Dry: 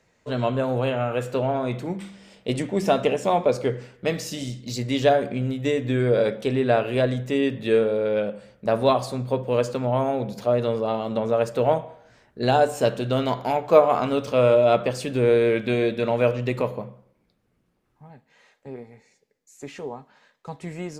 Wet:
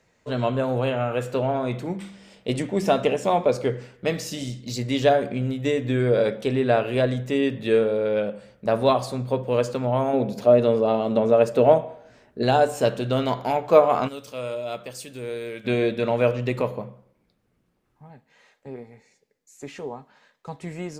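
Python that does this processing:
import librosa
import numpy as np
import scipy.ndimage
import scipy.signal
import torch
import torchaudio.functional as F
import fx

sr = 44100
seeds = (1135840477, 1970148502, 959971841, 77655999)

y = fx.small_body(x, sr, hz=(260.0, 410.0, 610.0, 2600.0), ring_ms=25, db=6, at=(10.13, 12.43))
y = fx.pre_emphasis(y, sr, coefficient=0.8, at=(14.07, 15.64), fade=0.02)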